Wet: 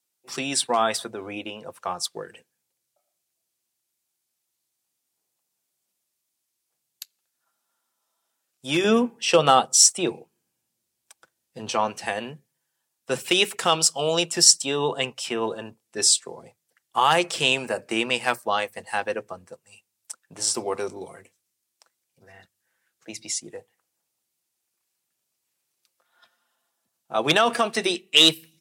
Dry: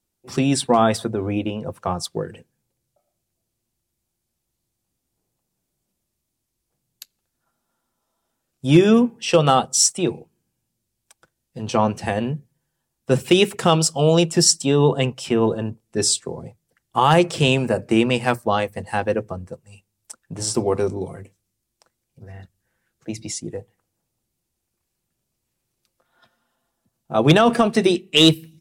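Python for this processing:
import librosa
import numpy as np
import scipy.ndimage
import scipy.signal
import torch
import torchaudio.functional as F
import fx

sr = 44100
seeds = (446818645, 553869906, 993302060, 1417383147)

y = fx.highpass(x, sr, hz=fx.steps((0.0, 1400.0), (8.84, 550.0), (11.73, 1200.0)), slope=6)
y = y * librosa.db_to_amplitude(1.5)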